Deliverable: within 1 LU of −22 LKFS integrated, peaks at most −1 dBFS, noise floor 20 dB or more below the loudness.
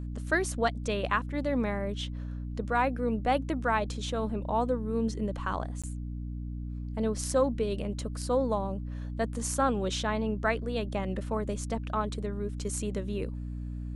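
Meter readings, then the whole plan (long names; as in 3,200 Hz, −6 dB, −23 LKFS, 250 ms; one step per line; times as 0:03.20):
number of dropouts 1; longest dropout 16 ms; mains hum 60 Hz; hum harmonics up to 300 Hz; level of the hum −34 dBFS; integrated loudness −31.5 LKFS; sample peak −12.5 dBFS; target loudness −22.0 LKFS
→ repair the gap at 0:05.82, 16 ms
hum removal 60 Hz, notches 5
level +9.5 dB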